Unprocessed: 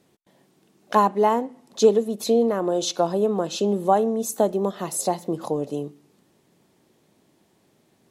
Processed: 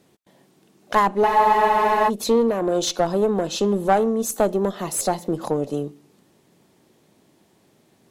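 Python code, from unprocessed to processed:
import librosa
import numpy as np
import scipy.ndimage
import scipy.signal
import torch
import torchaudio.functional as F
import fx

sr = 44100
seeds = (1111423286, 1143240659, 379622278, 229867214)

y = fx.diode_clip(x, sr, knee_db=-18.5)
y = fx.spec_freeze(y, sr, seeds[0], at_s=1.28, hold_s=0.79)
y = y * librosa.db_to_amplitude(3.5)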